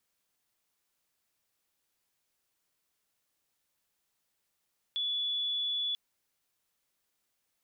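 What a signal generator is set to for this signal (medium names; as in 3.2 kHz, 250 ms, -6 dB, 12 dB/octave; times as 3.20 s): tone sine 3.43 kHz -29.5 dBFS 0.99 s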